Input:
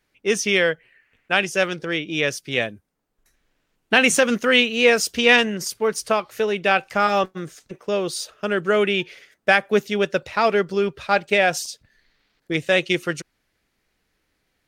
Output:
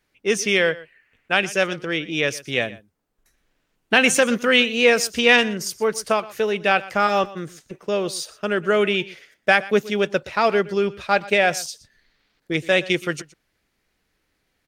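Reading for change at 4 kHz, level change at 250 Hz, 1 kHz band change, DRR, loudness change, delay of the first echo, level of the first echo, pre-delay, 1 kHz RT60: 0.0 dB, 0.0 dB, 0.0 dB, no reverb, 0.0 dB, 120 ms, -19.0 dB, no reverb, no reverb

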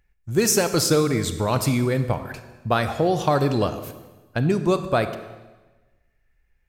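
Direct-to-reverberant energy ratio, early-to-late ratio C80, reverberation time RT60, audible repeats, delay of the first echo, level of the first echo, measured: 9.5 dB, 12.0 dB, 1.2 s, no echo, no echo, no echo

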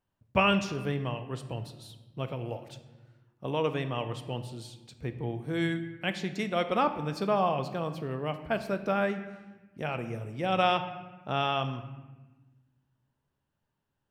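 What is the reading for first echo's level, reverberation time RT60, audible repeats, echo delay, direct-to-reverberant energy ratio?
no echo, 1.2 s, no echo, no echo, 8.0 dB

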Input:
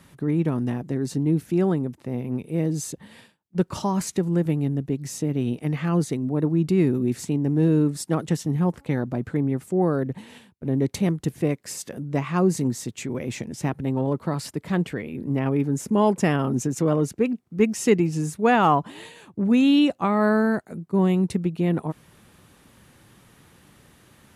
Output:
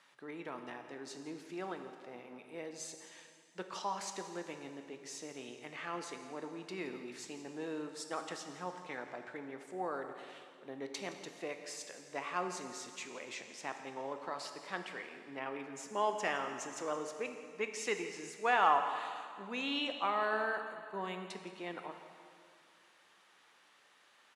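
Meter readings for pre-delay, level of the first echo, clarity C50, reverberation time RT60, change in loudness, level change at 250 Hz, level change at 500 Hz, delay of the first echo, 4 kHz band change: 6 ms, -17.0 dB, 7.0 dB, 2.3 s, -15.5 dB, -24.5 dB, -15.0 dB, 169 ms, -6.5 dB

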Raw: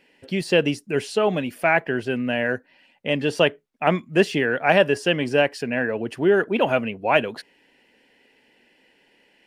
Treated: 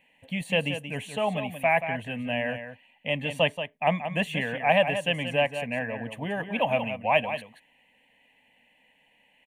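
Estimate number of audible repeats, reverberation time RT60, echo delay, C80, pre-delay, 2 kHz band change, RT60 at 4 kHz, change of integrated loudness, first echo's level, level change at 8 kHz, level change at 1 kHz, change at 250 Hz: 1, no reverb, 180 ms, no reverb, no reverb, -4.5 dB, no reverb, -5.5 dB, -9.5 dB, -7.0 dB, -2.5 dB, -8.0 dB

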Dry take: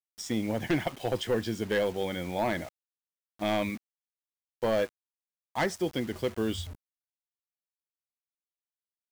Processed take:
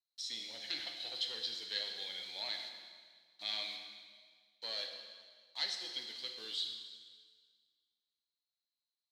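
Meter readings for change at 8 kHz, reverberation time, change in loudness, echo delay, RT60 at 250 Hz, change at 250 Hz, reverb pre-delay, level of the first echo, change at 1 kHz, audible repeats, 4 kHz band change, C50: -7.5 dB, 1.7 s, -8.5 dB, no echo, 1.7 s, -30.0 dB, 3 ms, no echo, -19.5 dB, no echo, +4.0 dB, 4.5 dB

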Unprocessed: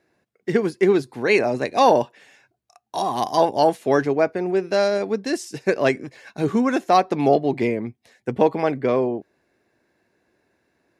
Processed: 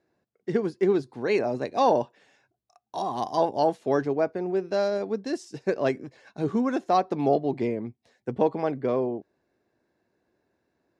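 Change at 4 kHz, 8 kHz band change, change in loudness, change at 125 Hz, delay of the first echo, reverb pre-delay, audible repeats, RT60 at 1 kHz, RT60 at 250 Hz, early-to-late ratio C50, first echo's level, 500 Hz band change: -9.0 dB, under -10 dB, -5.5 dB, -5.0 dB, no echo, no reverb, no echo, no reverb, no reverb, no reverb, no echo, -5.5 dB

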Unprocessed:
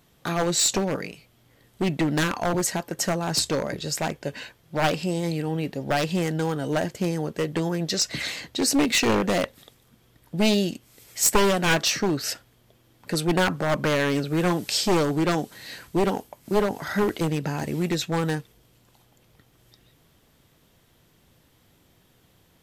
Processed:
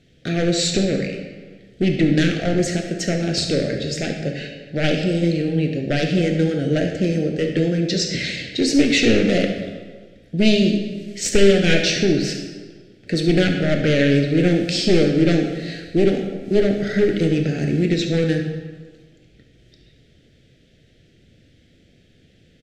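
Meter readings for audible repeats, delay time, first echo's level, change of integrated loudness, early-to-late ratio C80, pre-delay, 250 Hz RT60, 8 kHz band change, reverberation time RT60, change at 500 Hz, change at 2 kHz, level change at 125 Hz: 1, 71 ms, -12.0 dB, +5.0 dB, 7.0 dB, 22 ms, 1.5 s, -2.5 dB, 1.5 s, +6.5 dB, +3.5 dB, +7.5 dB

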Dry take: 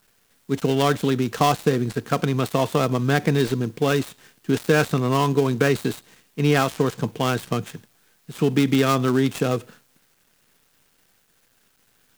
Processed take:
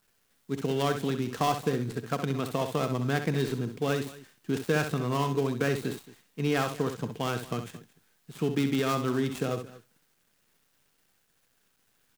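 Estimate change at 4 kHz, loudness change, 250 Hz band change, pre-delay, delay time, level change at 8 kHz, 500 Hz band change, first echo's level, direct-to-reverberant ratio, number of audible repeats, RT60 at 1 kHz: -8.0 dB, -8.0 dB, -8.0 dB, no reverb, 65 ms, -8.0 dB, -8.0 dB, -8.5 dB, no reverb, 2, no reverb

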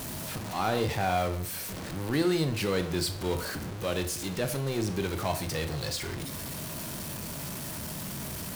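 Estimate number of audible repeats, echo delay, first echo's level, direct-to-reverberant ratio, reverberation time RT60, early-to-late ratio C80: no echo, no echo, no echo, 7.0 dB, 0.55 s, 15.0 dB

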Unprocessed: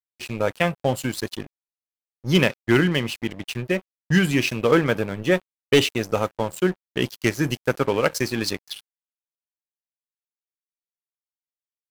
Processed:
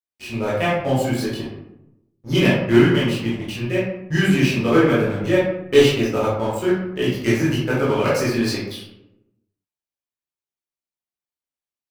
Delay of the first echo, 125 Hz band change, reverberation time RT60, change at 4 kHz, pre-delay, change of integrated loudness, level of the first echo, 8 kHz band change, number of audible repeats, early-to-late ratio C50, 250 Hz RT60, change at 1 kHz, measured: no echo, +4.0 dB, 0.85 s, +0.5 dB, 14 ms, +3.5 dB, no echo, -0.5 dB, no echo, 0.5 dB, 1.1 s, +2.5 dB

